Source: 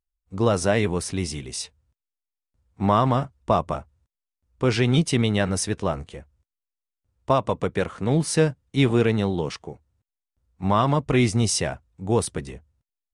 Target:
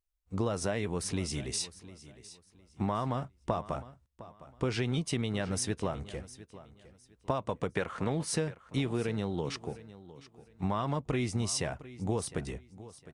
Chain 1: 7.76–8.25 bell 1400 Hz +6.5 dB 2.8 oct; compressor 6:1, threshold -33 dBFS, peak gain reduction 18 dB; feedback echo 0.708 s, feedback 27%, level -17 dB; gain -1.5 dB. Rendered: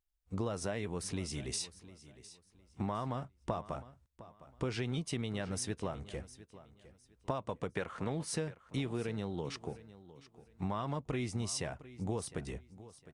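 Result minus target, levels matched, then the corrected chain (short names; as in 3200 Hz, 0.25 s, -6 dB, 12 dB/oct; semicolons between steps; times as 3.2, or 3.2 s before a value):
compressor: peak gain reduction +5 dB
7.76–8.25 bell 1400 Hz +6.5 dB 2.8 oct; compressor 6:1, threshold -27 dBFS, peak gain reduction 13 dB; feedback echo 0.708 s, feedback 27%, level -17 dB; gain -1.5 dB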